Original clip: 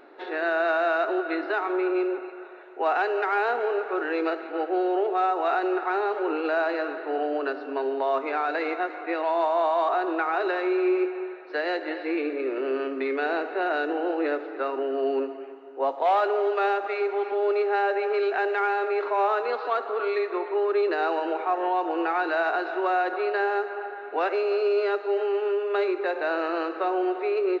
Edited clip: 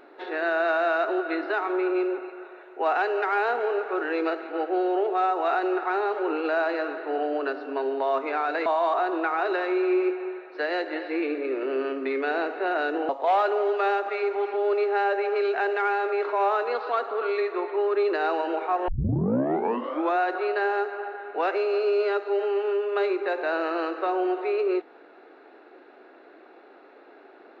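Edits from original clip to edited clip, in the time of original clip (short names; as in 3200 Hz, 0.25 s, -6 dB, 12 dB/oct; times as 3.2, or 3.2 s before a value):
8.66–9.61 cut
14.04–15.87 cut
21.66 tape start 1.31 s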